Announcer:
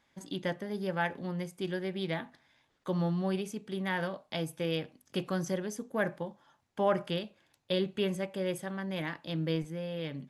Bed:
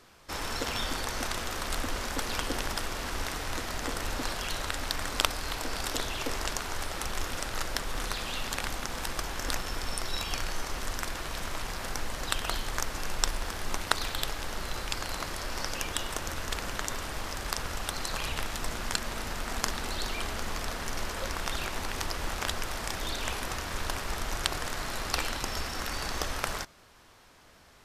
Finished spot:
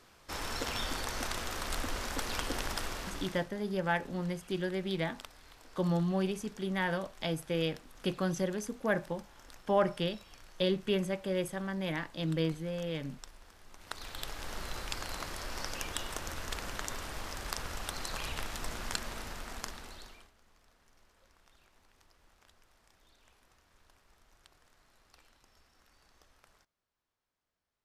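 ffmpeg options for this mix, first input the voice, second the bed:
ffmpeg -i stem1.wav -i stem2.wav -filter_complex "[0:a]adelay=2900,volume=0.5dB[link_01];[1:a]volume=14dB,afade=type=out:start_time=2.88:duration=0.61:silence=0.112202,afade=type=in:start_time=13.76:duration=0.78:silence=0.133352,afade=type=out:start_time=18.98:duration=1.33:silence=0.0421697[link_02];[link_01][link_02]amix=inputs=2:normalize=0" out.wav

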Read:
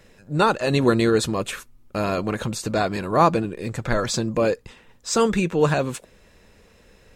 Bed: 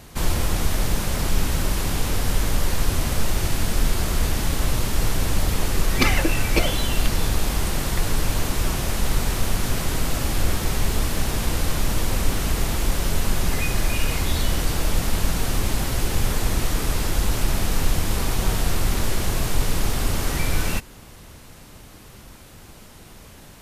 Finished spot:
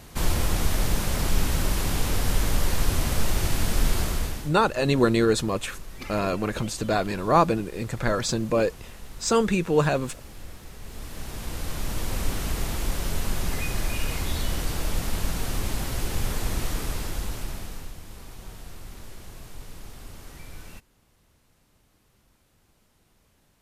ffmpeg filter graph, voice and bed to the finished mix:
ffmpeg -i stem1.wav -i stem2.wav -filter_complex "[0:a]adelay=4150,volume=-2dB[link_01];[1:a]volume=13dB,afade=type=out:start_time=3.98:duration=0.55:silence=0.11885,afade=type=in:start_time=10.8:duration=1.44:silence=0.177828,afade=type=out:start_time=16.69:duration=1.25:silence=0.188365[link_02];[link_01][link_02]amix=inputs=2:normalize=0" out.wav

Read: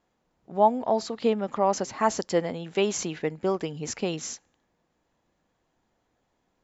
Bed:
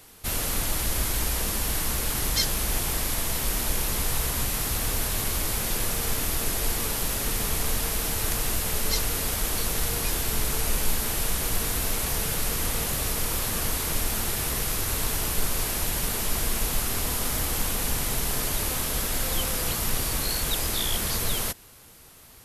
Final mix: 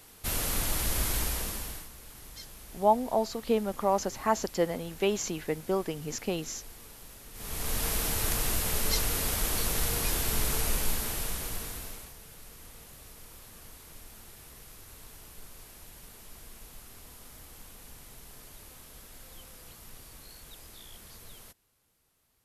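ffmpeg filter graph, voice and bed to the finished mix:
ffmpeg -i stem1.wav -i stem2.wav -filter_complex "[0:a]adelay=2250,volume=-3dB[link_01];[1:a]volume=16dB,afade=type=out:start_time=1.15:duration=0.74:silence=0.11885,afade=type=in:start_time=7.33:duration=0.55:silence=0.112202,afade=type=out:start_time=10.54:duration=1.6:silence=0.1[link_02];[link_01][link_02]amix=inputs=2:normalize=0" out.wav

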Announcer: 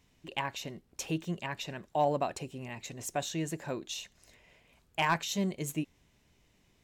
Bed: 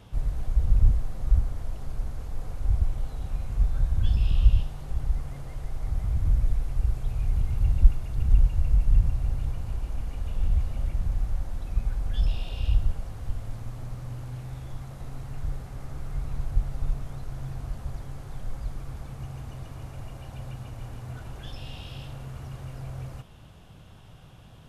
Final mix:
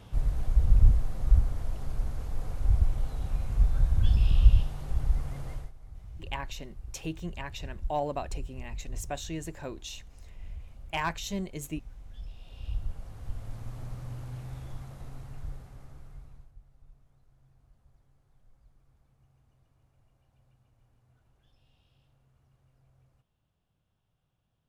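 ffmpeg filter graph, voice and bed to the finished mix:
ffmpeg -i stem1.wav -i stem2.wav -filter_complex "[0:a]adelay=5950,volume=-2.5dB[link_01];[1:a]volume=15dB,afade=type=out:start_time=5.52:duration=0.2:silence=0.125893,afade=type=in:start_time=12.35:duration=1.41:silence=0.177828,afade=type=out:start_time=14.63:duration=1.9:silence=0.0530884[link_02];[link_01][link_02]amix=inputs=2:normalize=0" out.wav

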